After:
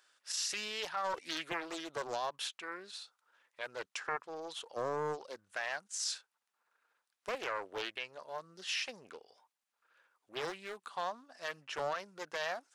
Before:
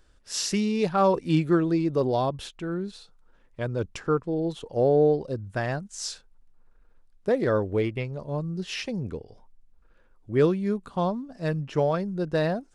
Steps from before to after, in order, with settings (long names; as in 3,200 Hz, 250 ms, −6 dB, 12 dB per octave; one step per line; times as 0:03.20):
high-pass filter 1,100 Hz 12 dB per octave
brickwall limiter −27.5 dBFS, peak gain reduction 11.5 dB
highs frequency-modulated by the lows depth 0.53 ms
level +1 dB